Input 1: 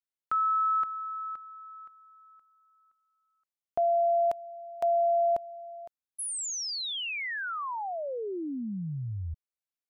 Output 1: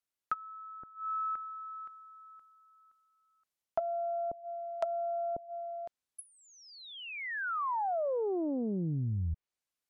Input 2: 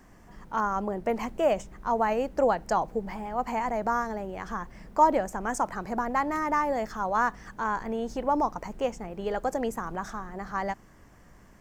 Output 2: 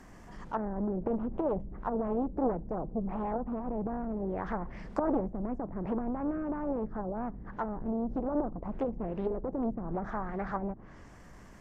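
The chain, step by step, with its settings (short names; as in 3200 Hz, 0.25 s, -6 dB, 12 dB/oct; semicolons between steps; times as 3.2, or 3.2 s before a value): transient shaper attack -3 dB, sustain +2 dB; treble ducked by the level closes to 350 Hz, closed at -28 dBFS; Doppler distortion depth 0.69 ms; gain +2.5 dB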